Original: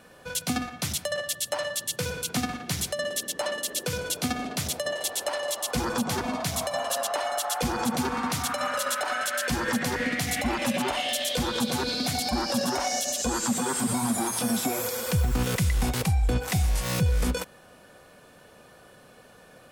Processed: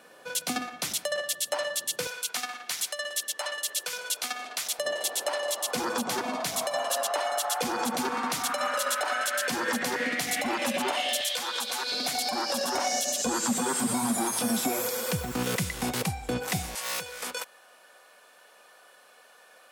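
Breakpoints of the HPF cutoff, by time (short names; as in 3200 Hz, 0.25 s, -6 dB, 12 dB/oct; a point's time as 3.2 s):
310 Hz
from 2.07 s 900 Hz
from 4.79 s 290 Hz
from 11.21 s 850 Hz
from 11.92 s 410 Hz
from 12.75 s 180 Hz
from 16.75 s 740 Hz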